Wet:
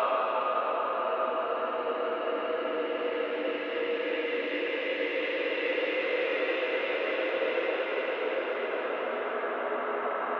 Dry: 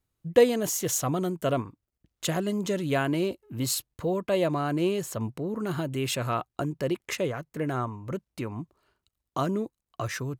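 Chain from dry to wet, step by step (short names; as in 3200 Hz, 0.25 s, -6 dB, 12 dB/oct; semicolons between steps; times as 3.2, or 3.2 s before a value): mistuned SSB -52 Hz 520–3300 Hz; Paulstretch 8.7×, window 1.00 s, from 6.44; gain +5.5 dB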